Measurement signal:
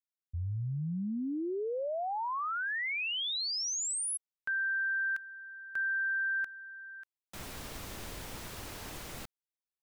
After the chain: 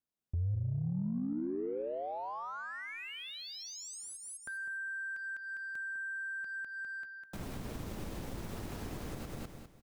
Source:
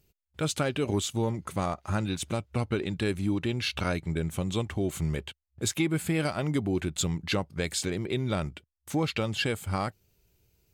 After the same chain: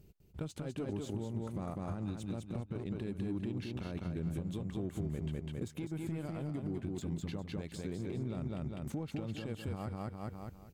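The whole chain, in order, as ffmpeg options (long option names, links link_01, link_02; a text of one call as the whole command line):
ffmpeg -i in.wav -af "aeval=exprs='0.188*(cos(1*acos(clip(val(0)/0.188,-1,1)))-cos(1*PI/2))+0.0237*(cos(3*acos(clip(val(0)/0.188,-1,1)))-cos(3*PI/2))':channel_layout=same,alimiter=limit=-24dB:level=0:latency=1:release=146,equalizer=frequency=200:width=0.88:gain=4,acontrast=51,aecho=1:1:202|404|606|808:0.631|0.202|0.0646|0.0207,acompressor=threshold=-38dB:ratio=16:attack=0.13:release=447:knee=1:detection=peak,aeval=exprs='0.0168*(cos(1*acos(clip(val(0)/0.0168,-1,1)))-cos(1*PI/2))+0.000531*(cos(7*acos(clip(val(0)/0.0168,-1,1)))-cos(7*PI/2))':channel_layout=same,tiltshelf=frequency=970:gain=5.5,volume=3dB" out.wav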